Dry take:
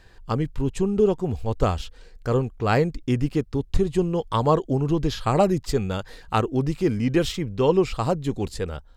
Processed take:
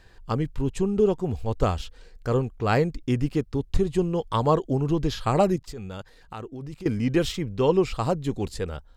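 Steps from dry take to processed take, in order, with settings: 5.56–6.86 level quantiser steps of 17 dB; gain -1.5 dB

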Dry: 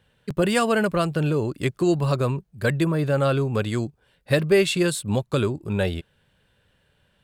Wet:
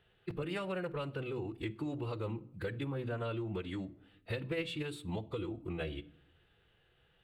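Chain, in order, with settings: resonant high shelf 4400 Hz -9.5 dB, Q 1.5; notches 50/100/150/200/250/300/350/400 Hz; compressor 4:1, threshold -32 dBFS, peak gain reduction 15.5 dB; formant-preserving pitch shift -3 st; on a send: reverb RT60 0.70 s, pre-delay 6 ms, DRR 15 dB; on the sum: gain -5 dB

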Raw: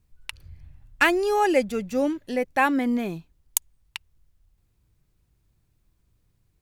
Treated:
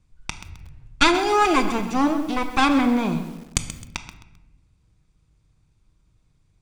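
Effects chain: minimum comb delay 0.85 ms; LPF 8800 Hz 24 dB/oct; shoebox room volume 540 m³, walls mixed, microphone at 0.54 m; lo-fi delay 0.131 s, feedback 35%, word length 7-bit, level -12 dB; gain +4.5 dB

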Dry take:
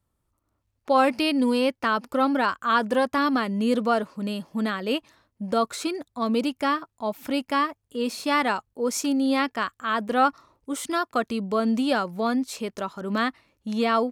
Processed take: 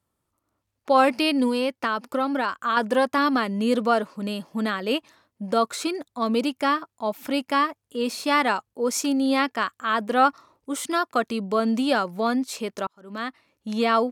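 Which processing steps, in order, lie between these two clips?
HPF 180 Hz 6 dB/oct; 1.47–2.77 compressor 3:1, threshold -24 dBFS, peak gain reduction 6 dB; 12.87–13.72 fade in; gain +2 dB; Vorbis 192 kbps 48000 Hz

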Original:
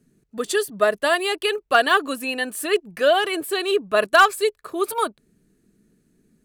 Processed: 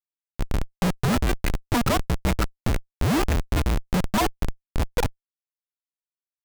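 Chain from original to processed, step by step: frequency shift -450 Hz; loudest bins only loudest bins 16; Schmitt trigger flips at -22 dBFS; gain +2.5 dB

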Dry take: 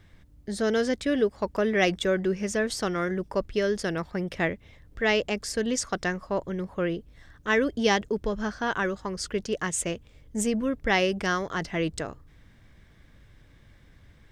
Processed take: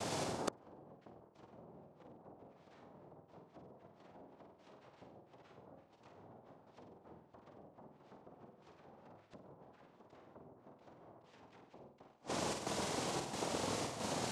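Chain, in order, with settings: echoes that change speed 0.113 s, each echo +2 st, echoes 3, each echo -6 dB; compressor 8:1, threshold -33 dBFS, peak gain reduction 16.5 dB; noise vocoder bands 2; chopper 1.5 Hz, depth 60%, duty 80%; treble ducked by the level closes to 670 Hz, closed at -31.5 dBFS; flutter echo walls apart 8.3 m, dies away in 0.54 s; flipped gate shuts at -37 dBFS, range -40 dB; gain +18 dB

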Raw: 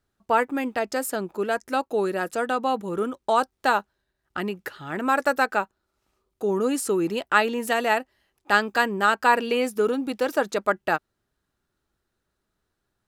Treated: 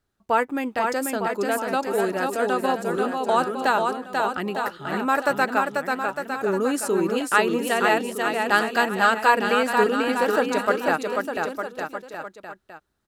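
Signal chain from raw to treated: bouncing-ball echo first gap 0.49 s, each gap 0.85×, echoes 5

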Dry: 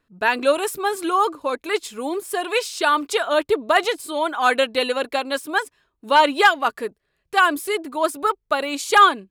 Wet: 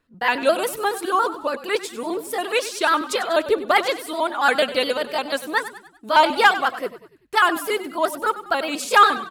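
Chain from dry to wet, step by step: trilling pitch shifter +2 st, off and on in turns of 70 ms; frequency-shifting echo 97 ms, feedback 46%, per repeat -36 Hz, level -14 dB

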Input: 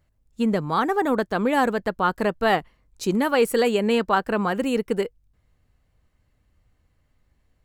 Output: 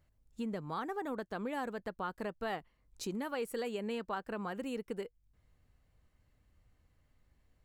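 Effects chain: compressor 2:1, threshold -41 dBFS, peak gain reduction 14 dB; gain -4.5 dB

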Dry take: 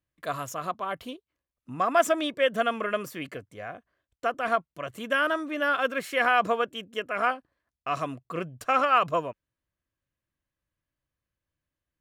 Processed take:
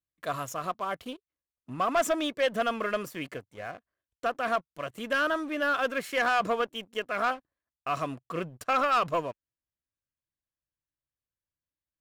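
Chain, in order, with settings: sample leveller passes 2; gain -8 dB

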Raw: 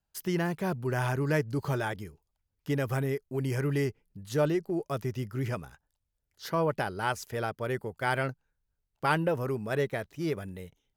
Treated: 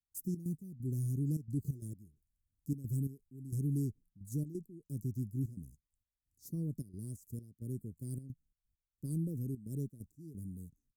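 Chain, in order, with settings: step gate ".xx.x..xxxxx" 132 bpm -12 dB; elliptic band-stop 270–7600 Hz, stop band 50 dB; gain -2 dB

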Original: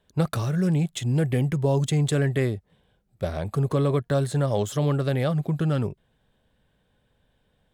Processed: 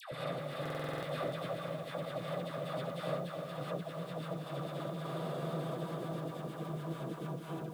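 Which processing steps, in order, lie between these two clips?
low shelf 83 Hz -6 dB; Paulstretch 49×, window 0.50 s, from 5.32; gate -22 dBFS, range -11 dB; multi-head echo 0.205 s, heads first and third, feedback 48%, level -8.5 dB; negative-ratio compressor -38 dBFS, ratio -1; low shelf 320 Hz -11.5 dB; dispersion lows, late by 0.119 s, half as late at 980 Hz; on a send at -23 dB: reverb RT60 0.30 s, pre-delay 0.15 s; on the sum: stuck buffer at 0.61, samples 2048, times 8; lo-fi delay 0.296 s, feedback 55%, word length 10-bit, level -7.5 dB; gain +3 dB

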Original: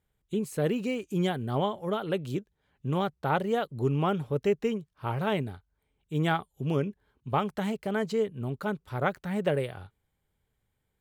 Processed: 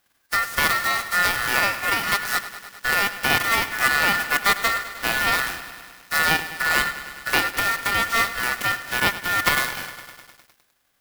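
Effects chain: spectral whitening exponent 0.3; bell 8100 Hz -4 dB 1.5 oct; in parallel at +1 dB: compressor, threshold -34 dBFS, peak gain reduction 13 dB; on the sum: ring modulator 1600 Hz; lo-fi delay 0.102 s, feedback 80%, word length 8-bit, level -14 dB; gain +7 dB

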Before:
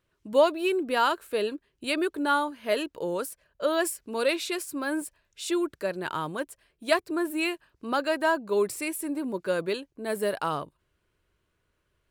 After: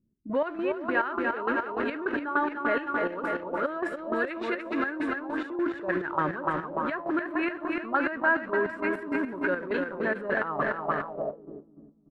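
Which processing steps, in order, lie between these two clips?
bell 280 Hz +5 dB 0.86 oct; feedback echo 0.294 s, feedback 52%, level -8 dB; in parallel at -5.5 dB: bit-crush 6-bit; on the sum: de-hum 171.2 Hz, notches 37; transient shaper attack -6 dB, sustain +8 dB; 3.89–4.31 bell 1100 Hz -7.5 dB 2.1 oct; on a send: echo 0.413 s -10 dB; on the sum: compressor 6:1, threshold -25 dBFS, peak gain reduction 12.5 dB; chopper 3.4 Hz, depth 65%, duty 45%; envelope low-pass 220–1700 Hz up, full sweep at -28 dBFS

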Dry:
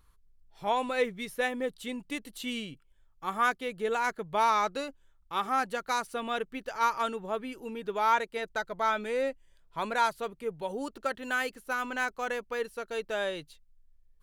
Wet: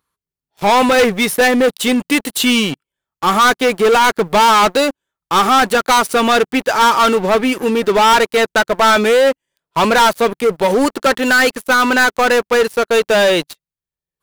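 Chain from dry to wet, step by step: HPF 170 Hz 12 dB/oct; high shelf 12000 Hz +3 dB; sample leveller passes 5; gain +6.5 dB

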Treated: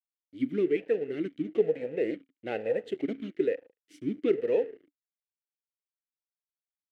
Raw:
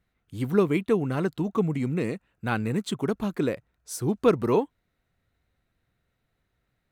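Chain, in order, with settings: 1.51–3.16 band shelf 680 Hz +13.5 dB 1.1 oct; FDN reverb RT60 0.99 s, low-frequency decay 1.6×, high-frequency decay 0.6×, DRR 15.5 dB; crossover distortion -38 dBFS; vowel sweep e-i 1.1 Hz; gain +6.5 dB

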